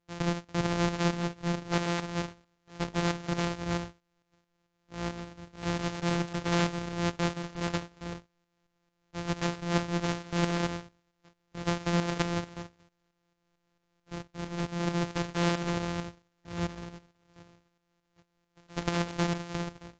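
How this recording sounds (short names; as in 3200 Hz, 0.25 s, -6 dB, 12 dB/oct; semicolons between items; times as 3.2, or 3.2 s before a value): a buzz of ramps at a fixed pitch in blocks of 256 samples; tremolo saw up 4.5 Hz, depth 60%; AAC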